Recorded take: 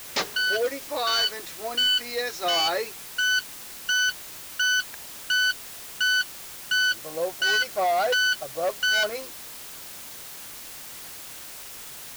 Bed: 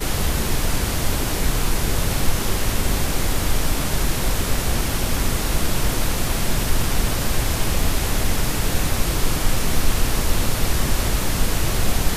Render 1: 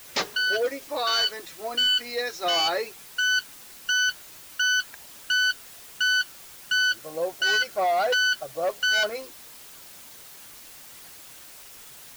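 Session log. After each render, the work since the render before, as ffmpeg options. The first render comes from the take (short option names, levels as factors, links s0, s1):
-af "afftdn=nr=6:nf=-41"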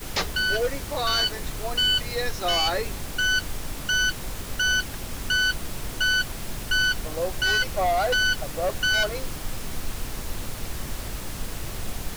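-filter_complex "[1:a]volume=0.237[s0];[0:a][s0]amix=inputs=2:normalize=0"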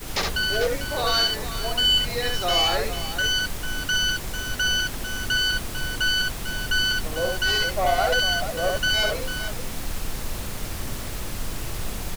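-af "aecho=1:1:67|447:0.668|0.299"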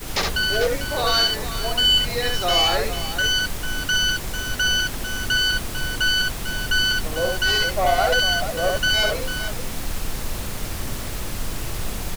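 -af "volume=1.33"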